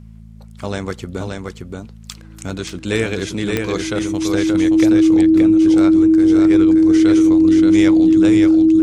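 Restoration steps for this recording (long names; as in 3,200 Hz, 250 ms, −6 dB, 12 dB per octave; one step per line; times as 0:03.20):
click removal
hum removal 54.7 Hz, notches 4
notch filter 320 Hz, Q 30
echo removal 576 ms −4 dB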